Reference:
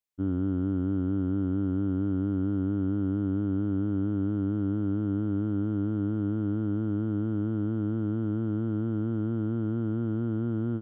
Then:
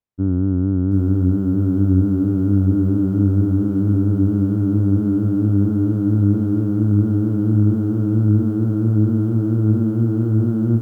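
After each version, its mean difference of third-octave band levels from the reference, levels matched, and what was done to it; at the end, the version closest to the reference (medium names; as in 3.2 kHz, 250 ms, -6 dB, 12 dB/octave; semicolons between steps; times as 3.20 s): 3.5 dB: low-pass 1.1 kHz 6 dB/octave; peaking EQ 82 Hz +6.5 dB 2.8 oct; echo that smears into a reverb 1130 ms, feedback 58%, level -15.5 dB; bit-crushed delay 732 ms, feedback 55%, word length 10-bit, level -5 dB; trim +6 dB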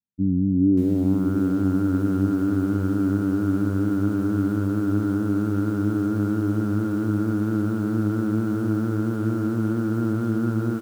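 6.5 dB: high-pass 74 Hz 6 dB/octave; low-pass sweep 210 Hz -> 1.6 kHz, 0.53–1.35 s; on a send: feedback delay 344 ms, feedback 59%, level -19 dB; on the sum: bit-crushed delay 584 ms, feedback 55%, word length 8-bit, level -7 dB; trim +5 dB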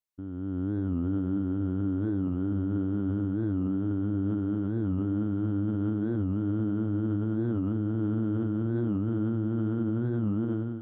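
2.0 dB: on a send: echo that smears into a reverb 632 ms, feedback 48%, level -9.5 dB; on the sum: peak limiter -27.5 dBFS, peak gain reduction 10.5 dB; level rider gain up to 9.5 dB; warped record 45 rpm, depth 160 cents; trim -3.5 dB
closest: third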